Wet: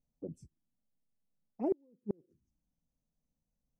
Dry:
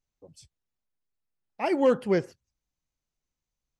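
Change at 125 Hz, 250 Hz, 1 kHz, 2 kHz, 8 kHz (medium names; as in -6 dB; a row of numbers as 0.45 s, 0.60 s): -11.5 dB, -10.5 dB, -17.5 dB, under -35 dB, no reading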